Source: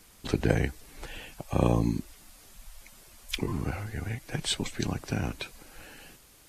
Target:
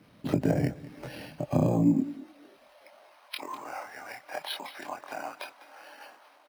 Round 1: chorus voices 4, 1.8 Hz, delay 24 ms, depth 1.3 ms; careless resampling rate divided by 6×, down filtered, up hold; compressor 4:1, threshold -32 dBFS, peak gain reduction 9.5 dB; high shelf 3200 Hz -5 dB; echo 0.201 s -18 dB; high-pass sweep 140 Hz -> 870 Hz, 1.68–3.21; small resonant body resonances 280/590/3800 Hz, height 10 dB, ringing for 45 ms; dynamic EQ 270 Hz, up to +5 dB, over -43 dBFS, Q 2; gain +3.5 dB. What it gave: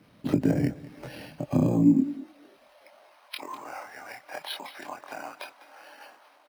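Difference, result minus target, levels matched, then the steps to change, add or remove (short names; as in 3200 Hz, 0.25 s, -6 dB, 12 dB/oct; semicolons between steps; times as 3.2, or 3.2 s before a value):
500 Hz band -4.5 dB
change: dynamic EQ 690 Hz, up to +5 dB, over -43 dBFS, Q 2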